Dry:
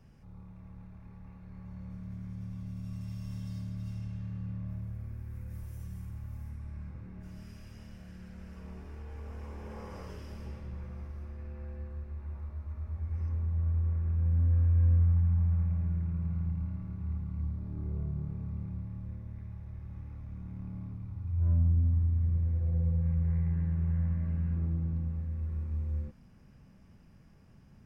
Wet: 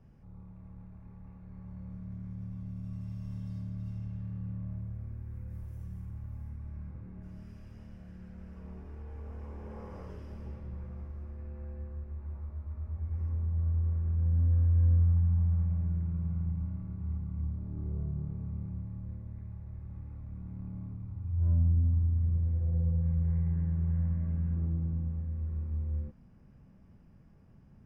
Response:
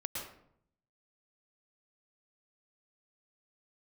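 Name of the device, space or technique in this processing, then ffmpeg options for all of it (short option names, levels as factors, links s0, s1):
through cloth: -af "highshelf=f=1900:g=-12"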